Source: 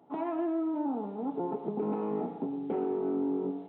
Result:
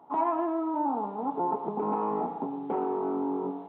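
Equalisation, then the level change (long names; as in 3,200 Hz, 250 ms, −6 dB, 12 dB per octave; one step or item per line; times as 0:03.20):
parametric band 1,000 Hz +15 dB 1 octave
−1.5 dB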